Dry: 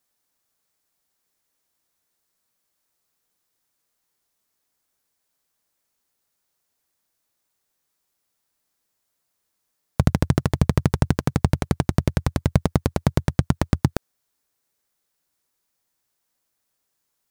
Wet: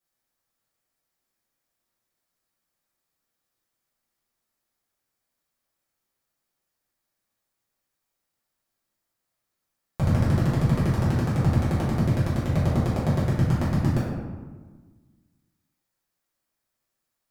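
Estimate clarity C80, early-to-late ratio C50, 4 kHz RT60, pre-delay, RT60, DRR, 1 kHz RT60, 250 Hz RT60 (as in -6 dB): 2.5 dB, 0.0 dB, 0.75 s, 3 ms, 1.4 s, -10.5 dB, 1.4 s, 1.8 s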